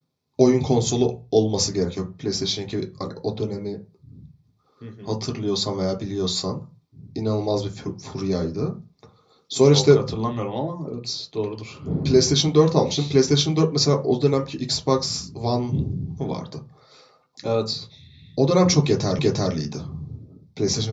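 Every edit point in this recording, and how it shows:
19.19 repeat of the last 0.35 s

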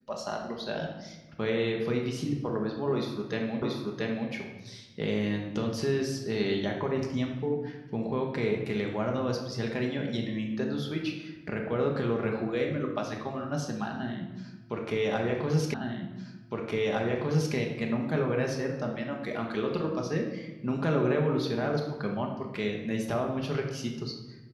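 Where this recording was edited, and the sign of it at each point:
3.62 repeat of the last 0.68 s
15.74 repeat of the last 1.81 s

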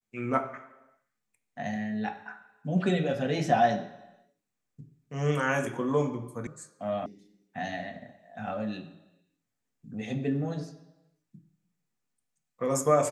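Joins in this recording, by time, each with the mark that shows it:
6.47 sound cut off
7.06 sound cut off

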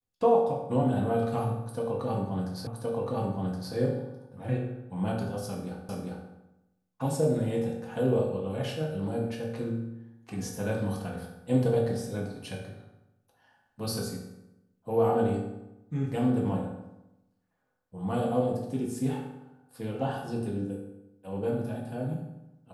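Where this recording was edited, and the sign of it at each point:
2.67 repeat of the last 1.07 s
5.89 repeat of the last 0.4 s

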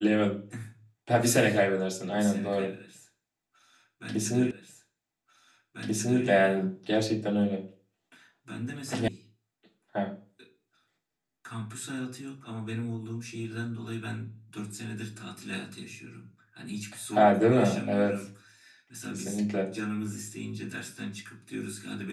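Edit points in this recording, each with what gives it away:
4.51 repeat of the last 1.74 s
9.08 sound cut off

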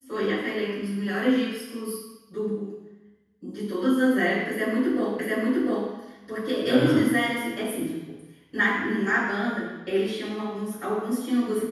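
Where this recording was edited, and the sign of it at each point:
5.19 repeat of the last 0.7 s

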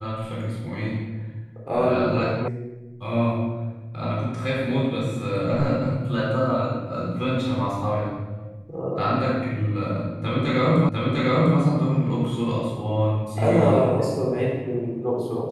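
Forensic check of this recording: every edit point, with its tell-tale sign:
2.48 sound cut off
10.89 repeat of the last 0.7 s

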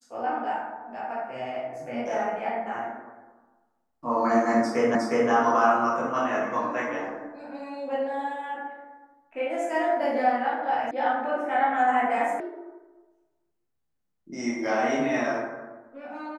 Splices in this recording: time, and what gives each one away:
4.95 repeat of the last 0.36 s
10.91 sound cut off
12.4 sound cut off

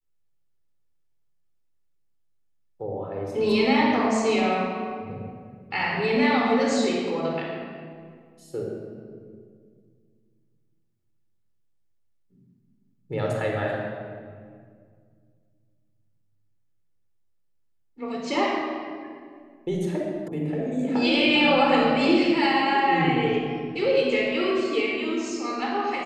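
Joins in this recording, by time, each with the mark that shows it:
20.28 sound cut off

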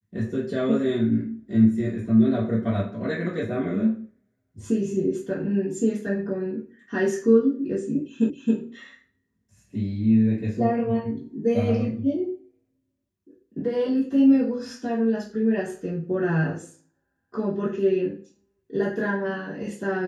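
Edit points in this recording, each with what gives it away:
8.3 repeat of the last 0.27 s

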